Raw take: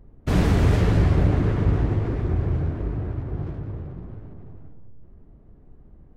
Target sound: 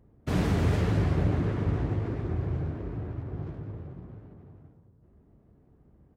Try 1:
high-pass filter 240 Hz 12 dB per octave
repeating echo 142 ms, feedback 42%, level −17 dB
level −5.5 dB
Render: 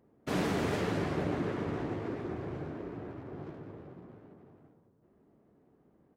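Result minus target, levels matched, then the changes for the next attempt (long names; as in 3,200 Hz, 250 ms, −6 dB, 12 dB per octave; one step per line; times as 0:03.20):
125 Hz band −6.0 dB
change: high-pass filter 70 Hz 12 dB per octave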